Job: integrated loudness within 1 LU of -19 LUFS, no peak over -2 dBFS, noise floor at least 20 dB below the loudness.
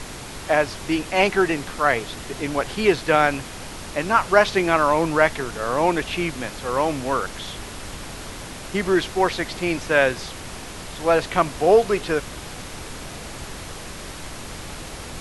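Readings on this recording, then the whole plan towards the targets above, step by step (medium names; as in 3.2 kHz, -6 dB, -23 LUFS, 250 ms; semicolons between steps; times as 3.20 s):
noise floor -36 dBFS; noise floor target -42 dBFS; loudness -21.5 LUFS; peak level -1.5 dBFS; loudness target -19.0 LUFS
-> noise print and reduce 6 dB; trim +2.5 dB; peak limiter -2 dBFS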